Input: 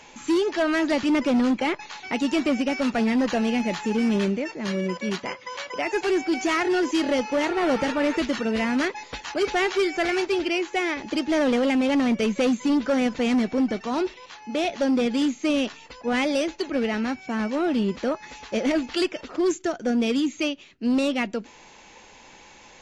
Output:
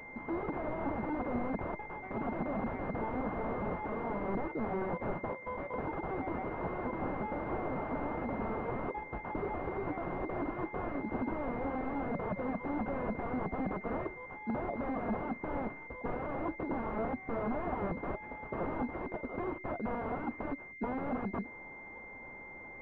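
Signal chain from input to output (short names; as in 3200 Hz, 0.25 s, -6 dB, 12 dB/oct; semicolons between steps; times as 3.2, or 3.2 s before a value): wrapped overs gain 25.5 dB; pulse-width modulation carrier 2100 Hz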